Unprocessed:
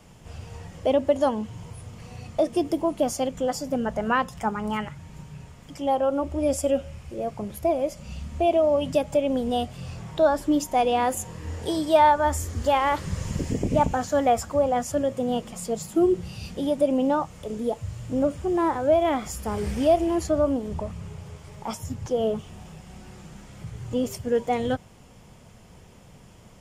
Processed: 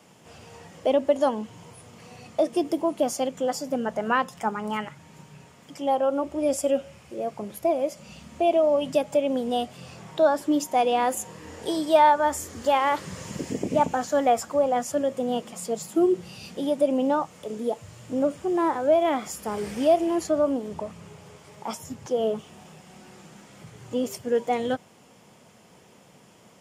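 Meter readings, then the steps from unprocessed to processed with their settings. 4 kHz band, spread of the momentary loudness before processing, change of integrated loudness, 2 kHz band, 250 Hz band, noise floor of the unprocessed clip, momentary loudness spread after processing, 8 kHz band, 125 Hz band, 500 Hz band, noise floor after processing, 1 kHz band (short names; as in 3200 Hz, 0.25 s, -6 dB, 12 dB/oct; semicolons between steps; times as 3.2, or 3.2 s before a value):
0.0 dB, 19 LU, -0.5 dB, 0.0 dB, -1.5 dB, -50 dBFS, 13 LU, 0.0 dB, -9.5 dB, 0.0 dB, -54 dBFS, 0.0 dB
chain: HPF 210 Hz 12 dB/oct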